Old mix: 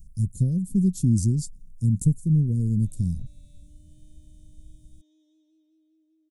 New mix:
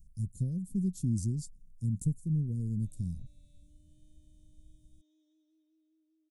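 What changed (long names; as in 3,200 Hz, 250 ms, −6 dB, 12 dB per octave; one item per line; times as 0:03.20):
speech −10.0 dB
background −7.5 dB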